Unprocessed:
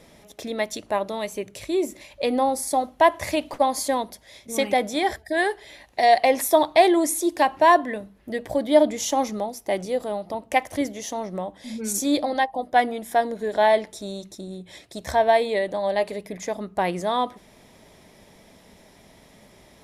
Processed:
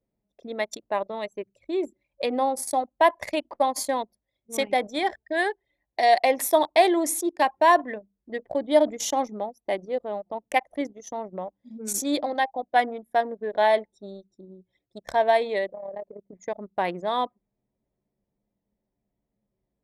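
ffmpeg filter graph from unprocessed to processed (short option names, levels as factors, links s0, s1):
-filter_complex "[0:a]asettb=1/sr,asplit=3[s0][s1][s2];[s0]atrim=end=15.724[s3];[s1]atrim=start=15.72:end=16.33,asetpts=PTS-STARTPTS,afade=t=in:d=0.004:c=qsin,afade=t=out:st=0.606:d=0.004:c=qsin,equalizer=f=3400:t=o:w=2.5:g=-13.5,acompressor=threshold=0.0398:ratio=2.5:attack=3.2:release=140:knee=1:detection=peak,tremolo=f=36:d=0.462[s4];[s2]atrim=start=16.326[s5];[s3][s4]acrossfade=d=0.004:c1=hsin:c2=qsin[s6];[s6][s5]acrossfade=d=0.004:c1=qsin:c2=hsin,highpass=f=270:p=1,anlmdn=39.8,volume=0.841"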